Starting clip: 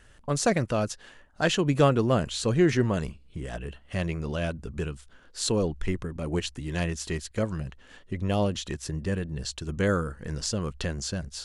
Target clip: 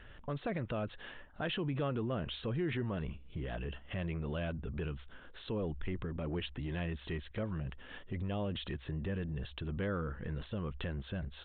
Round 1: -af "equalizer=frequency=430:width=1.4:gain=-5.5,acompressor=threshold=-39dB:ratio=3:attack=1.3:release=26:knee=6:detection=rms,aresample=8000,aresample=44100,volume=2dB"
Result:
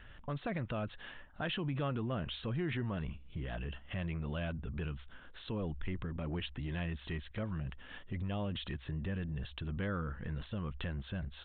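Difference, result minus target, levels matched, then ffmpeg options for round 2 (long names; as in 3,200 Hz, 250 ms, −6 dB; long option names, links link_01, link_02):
500 Hz band −2.5 dB
-af "acompressor=threshold=-39dB:ratio=3:attack=1.3:release=26:knee=6:detection=rms,aresample=8000,aresample=44100,volume=2dB"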